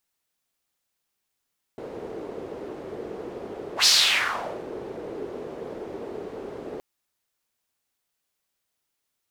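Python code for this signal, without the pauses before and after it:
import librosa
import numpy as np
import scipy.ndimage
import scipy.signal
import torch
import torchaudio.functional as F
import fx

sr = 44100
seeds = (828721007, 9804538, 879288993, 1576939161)

y = fx.whoosh(sr, seeds[0], length_s=5.02, peak_s=2.07, rise_s=0.1, fall_s=0.85, ends_hz=420.0, peak_hz=4800.0, q=3.2, swell_db=19.0)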